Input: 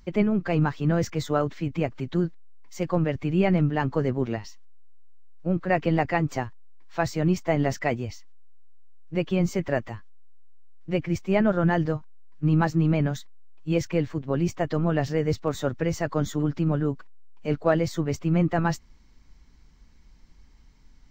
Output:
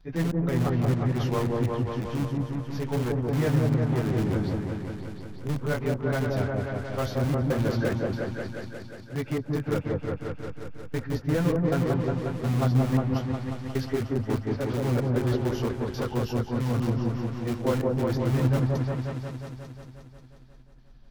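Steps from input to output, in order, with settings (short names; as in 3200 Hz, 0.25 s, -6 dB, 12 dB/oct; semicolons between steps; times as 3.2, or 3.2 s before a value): pitch shift by moving bins -4 st; in parallel at -9.5 dB: wrapped overs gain 22 dB; on the sum: step gate "xx.xxx.xx" 96 bpm -60 dB; on a send: repeats that get brighter 0.179 s, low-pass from 750 Hz, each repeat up 1 oct, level 0 dB; on the sum: gain -3.5 dB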